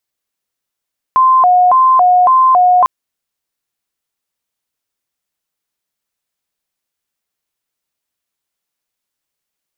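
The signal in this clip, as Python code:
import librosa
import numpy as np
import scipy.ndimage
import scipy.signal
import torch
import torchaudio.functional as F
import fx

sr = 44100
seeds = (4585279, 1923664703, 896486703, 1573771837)

y = fx.siren(sr, length_s=1.7, kind='hi-lo', low_hz=724.0, high_hz=1040.0, per_s=1.8, wave='sine', level_db=-5.5)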